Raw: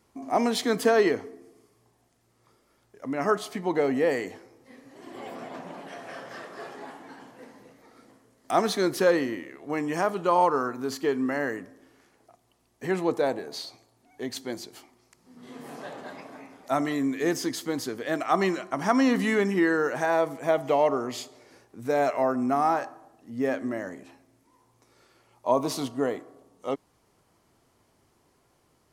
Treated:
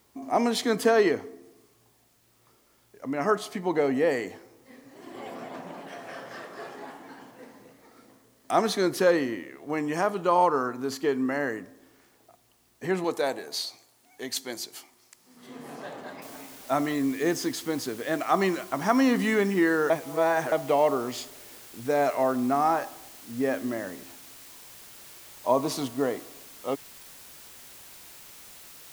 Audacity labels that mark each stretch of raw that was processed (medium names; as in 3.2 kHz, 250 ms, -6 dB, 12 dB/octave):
13.040000	15.470000	tilt EQ +2.5 dB/octave
16.220000	16.220000	noise floor step -67 dB -48 dB
19.900000	20.520000	reverse